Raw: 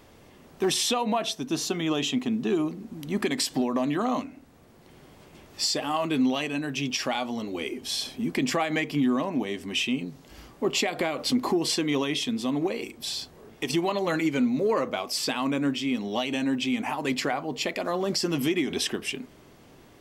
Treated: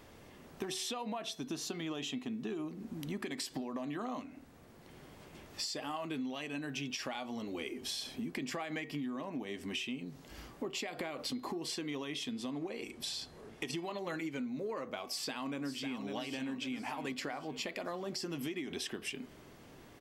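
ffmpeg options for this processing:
ffmpeg -i in.wav -filter_complex "[0:a]asettb=1/sr,asplit=3[link_01][link_02][link_03];[link_01]atrim=end=12.304[link_04];[link_02]atrim=start=12.3:end=13.83,asetpts=PTS-STARTPTS,afade=type=in:duration=0.004:curve=qsin,afade=type=out:start_time=1.526:duration=0.004:curve=qsin,lowpass=frequency=12000:width=0.5412,lowpass=frequency=12000:width=1.3066[link_05];[link_03]atrim=start=13.826[link_06];[link_04][link_05]acrossfade=duration=0.004:curve1=hsin:curve2=qsin[link_07];[link_07][link_06]acrossfade=duration=0.004:curve1=qsin:curve2=hsin,asplit=2[link_08][link_09];[link_09]afade=type=in:start_time=15.03:duration=0.01,afade=type=out:start_time=16.03:duration=0.01,aecho=0:1:550|1100|1650|2200|2750|3300:0.398107|0.199054|0.0995268|0.0497634|0.0248817|0.0124408[link_10];[link_08][link_10]amix=inputs=2:normalize=0,acompressor=threshold=-34dB:ratio=6,equalizer=frequency=1700:width_type=o:width=0.77:gain=2,bandreject=frequency=376.8:width_type=h:width=4,bandreject=frequency=753.6:width_type=h:width=4,bandreject=frequency=1130.4:width_type=h:width=4,bandreject=frequency=1507.2:width_type=h:width=4,bandreject=frequency=1884:width_type=h:width=4,bandreject=frequency=2260.8:width_type=h:width=4,bandreject=frequency=2637.6:width_type=h:width=4,bandreject=frequency=3014.4:width_type=h:width=4,bandreject=frequency=3391.2:width_type=h:width=4,bandreject=frequency=3768:width_type=h:width=4,bandreject=frequency=4144.8:width_type=h:width=4,bandreject=frequency=4521.6:width_type=h:width=4,bandreject=frequency=4898.4:width_type=h:width=4,volume=-3dB" out.wav

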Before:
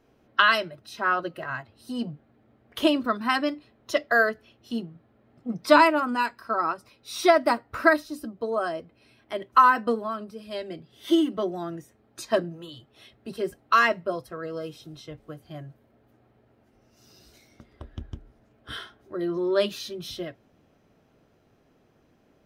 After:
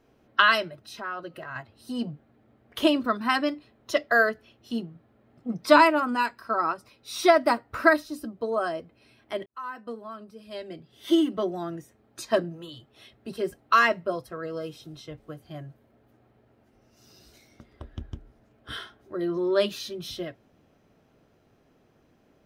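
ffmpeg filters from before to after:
ffmpeg -i in.wav -filter_complex "[0:a]asettb=1/sr,asplit=3[link_01][link_02][link_03];[link_01]atrim=end=0.824[link_04];[link_02]atrim=start=0.82:end=1.56,asetpts=PTS-STARTPTS,afade=type=in:duration=0.004:curve=qsin,afade=type=out:start_time=0.736:duration=0.004:curve=qsin,acompressor=threshold=-38dB:ratio=2:attack=3.2:release=140:knee=1:detection=peak[link_05];[link_03]atrim=start=1.556[link_06];[link_04][link_05]acrossfade=duration=0.004:curve1=hsin:curve2=qsin[link_07];[link_07][link_06]acrossfade=duration=0.004:curve1=qsin:curve2=hsin,asplit=2[link_08][link_09];[link_08]atrim=end=9.46,asetpts=PTS-STARTPTS,afade=type=out:start_time=9.456:duration=0.004:curve=hsin[link_10];[link_09]atrim=start=9.46,asetpts=PTS-STARTPTS,afade=type=in:duration=1.75[link_11];[link_10][link_11]concat=n=2:v=0:a=1" out.wav

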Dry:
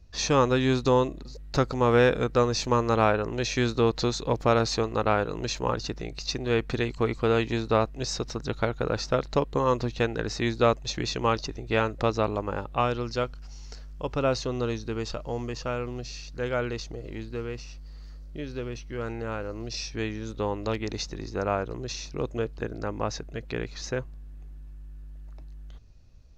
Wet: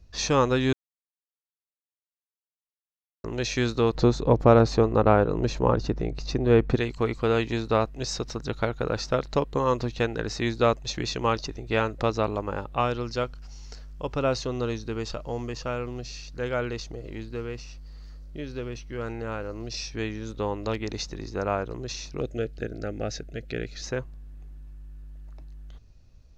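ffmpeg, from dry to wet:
ffmpeg -i in.wav -filter_complex "[0:a]asettb=1/sr,asplit=3[link_01][link_02][link_03];[link_01]atrim=end=3.954[link_04];[link_02]atrim=start=3.95:end=6.76,asetpts=PTS-STARTPTS,afade=type=in:duration=0.004:curve=qsin,afade=type=out:start_time=2.806:duration=0.004:curve=qsin,tiltshelf=frequency=1500:gain=7.5[link_05];[link_03]atrim=start=6.756[link_06];[link_04][link_05]acrossfade=duration=0.004:curve1=hsin:curve2=qsin[link_07];[link_07][link_06]acrossfade=duration=0.004:curve1=qsin:curve2=hsin,asettb=1/sr,asplit=3[link_08][link_09][link_10];[link_08]atrim=end=22.204[link_11];[link_09]atrim=start=22.2:end=23.83,asetpts=PTS-STARTPTS,afade=type=in:duration=0.004:curve=qsin,afade=type=out:start_time=1.626:duration=0.004:curve=qsin,asuperstop=centerf=1000:order=4:qfactor=1.6[link_12];[link_10]atrim=start=23.826[link_13];[link_11][link_12]acrossfade=duration=0.004:curve1=hsin:curve2=qsin[link_14];[link_14][link_13]acrossfade=duration=0.004:curve1=qsin:curve2=hsin,asplit=3[link_15][link_16][link_17];[link_15]atrim=end=0.73,asetpts=PTS-STARTPTS,afade=type=out:start_time=0.726:duration=0.004:curve=hsin[link_18];[link_16]atrim=start=0.73:end=3.24,asetpts=PTS-STARTPTS,volume=0[link_19];[link_17]atrim=start=3.24,asetpts=PTS-STARTPTS,afade=type=in:duration=0.004:curve=hsin[link_20];[link_18][link_19][link_20]concat=n=3:v=0:a=1" out.wav

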